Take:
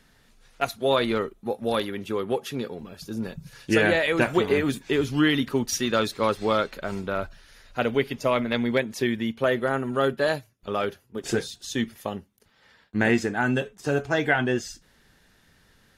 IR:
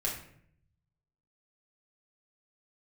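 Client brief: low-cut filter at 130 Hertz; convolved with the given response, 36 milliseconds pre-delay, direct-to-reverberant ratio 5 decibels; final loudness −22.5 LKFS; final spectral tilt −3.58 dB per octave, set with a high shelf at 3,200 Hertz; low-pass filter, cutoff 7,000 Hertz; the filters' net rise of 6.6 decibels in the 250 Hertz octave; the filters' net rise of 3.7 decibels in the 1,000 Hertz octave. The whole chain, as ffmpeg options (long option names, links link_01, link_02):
-filter_complex "[0:a]highpass=130,lowpass=7000,equalizer=frequency=250:width_type=o:gain=8,equalizer=frequency=1000:width_type=o:gain=3.5,highshelf=frequency=3200:gain=8,asplit=2[link_01][link_02];[1:a]atrim=start_sample=2205,adelay=36[link_03];[link_02][link_03]afir=irnorm=-1:irlink=0,volume=-9.5dB[link_04];[link_01][link_04]amix=inputs=2:normalize=0,volume=-2dB"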